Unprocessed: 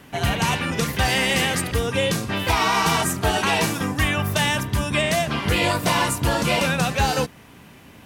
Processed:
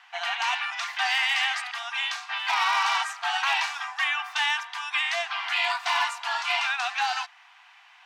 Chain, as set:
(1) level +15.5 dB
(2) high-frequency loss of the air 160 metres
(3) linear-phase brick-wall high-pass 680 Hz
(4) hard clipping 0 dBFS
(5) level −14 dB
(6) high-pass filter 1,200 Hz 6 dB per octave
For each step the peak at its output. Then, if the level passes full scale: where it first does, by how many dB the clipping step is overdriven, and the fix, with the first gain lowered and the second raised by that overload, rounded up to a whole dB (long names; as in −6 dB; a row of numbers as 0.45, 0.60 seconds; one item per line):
+7.0, +6.0, +4.5, 0.0, −14.0, −12.0 dBFS
step 1, 4.5 dB
step 1 +10.5 dB, step 5 −9 dB